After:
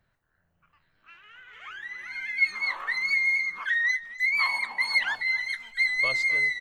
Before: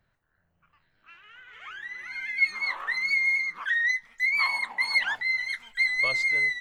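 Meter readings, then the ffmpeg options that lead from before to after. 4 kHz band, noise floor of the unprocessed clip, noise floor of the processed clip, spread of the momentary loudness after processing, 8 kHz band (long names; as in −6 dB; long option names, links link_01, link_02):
0.0 dB, −73 dBFS, −73 dBFS, 13 LU, can't be measured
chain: -filter_complex "[0:a]asplit=2[link_01][link_02];[link_02]adelay=256.6,volume=-16dB,highshelf=frequency=4000:gain=-5.77[link_03];[link_01][link_03]amix=inputs=2:normalize=0"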